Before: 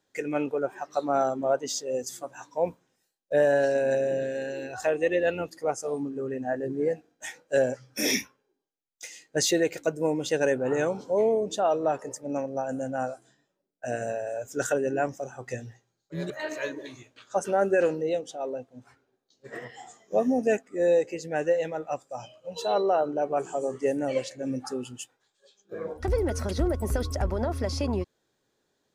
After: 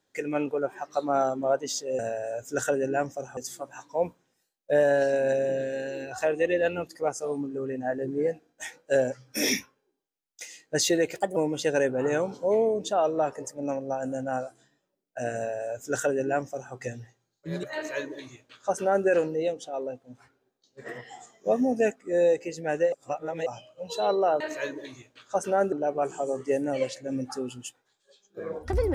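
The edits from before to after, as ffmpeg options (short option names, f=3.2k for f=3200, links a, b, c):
-filter_complex "[0:a]asplit=9[a][b][c][d][e][f][g][h][i];[a]atrim=end=1.992[j];[b]atrim=start=14.018:end=15.402[k];[c]atrim=start=1.988:end=9.784[l];[d]atrim=start=9.78:end=10.03,asetpts=PTS-STARTPTS,asetrate=54243,aresample=44100,atrim=end_sample=8963,asetpts=PTS-STARTPTS[m];[e]atrim=start=10.026:end=21.592[n];[f]atrim=start=21.588:end=22.132,asetpts=PTS-STARTPTS,areverse[o];[g]atrim=start=22.128:end=23.072[p];[h]atrim=start=16.408:end=17.732[q];[i]atrim=start=23.068[r];[j][k]acrossfade=d=0.004:c1=hsin:c2=hsin[s];[s][l]acrossfade=d=0.004:c1=hsin:c2=hsin[t];[t][m]acrossfade=d=0.004:c1=hsin:c2=hsin[u];[u][n]acrossfade=d=0.004:c1=hsin:c2=hsin[v];[v][o]acrossfade=d=0.004:c1=hsin:c2=hsin[w];[w][p]acrossfade=d=0.004:c1=hsin:c2=hsin[x];[x][q]acrossfade=d=0.004:c1=hsin:c2=hsin[y];[y][r]acrossfade=d=0.004:c1=hsin:c2=hsin"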